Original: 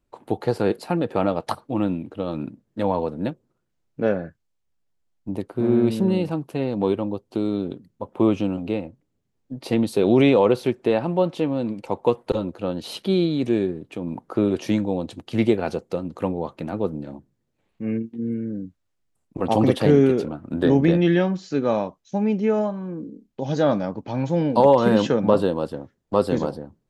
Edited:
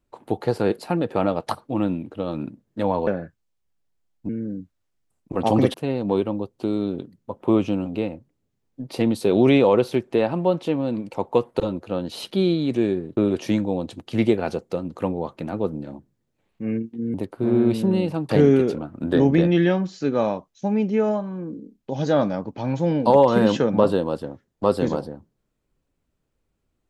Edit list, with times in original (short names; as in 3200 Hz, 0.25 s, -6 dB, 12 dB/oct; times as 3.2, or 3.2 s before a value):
3.07–4.09 cut
5.31–6.46 swap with 18.34–19.79
13.89–14.37 cut